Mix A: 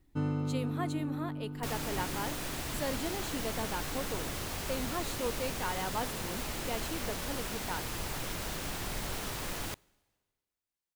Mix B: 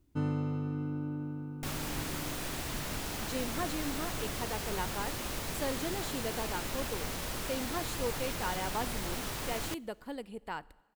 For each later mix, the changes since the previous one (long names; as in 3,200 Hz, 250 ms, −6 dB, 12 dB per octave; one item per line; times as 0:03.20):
speech: entry +2.80 s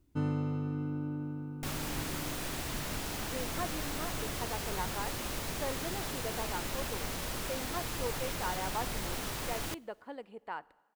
speech: add resonant band-pass 910 Hz, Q 0.62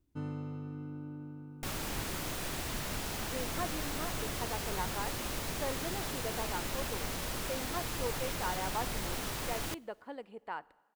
first sound −7.0 dB